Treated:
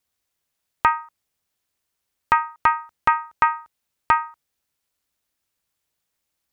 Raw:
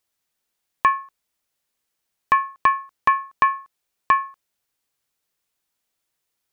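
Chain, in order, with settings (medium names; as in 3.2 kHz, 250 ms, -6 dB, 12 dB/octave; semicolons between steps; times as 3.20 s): ring modulator 160 Hz; peaking EQ 68 Hz +8 dB 1.5 oct; trim +2.5 dB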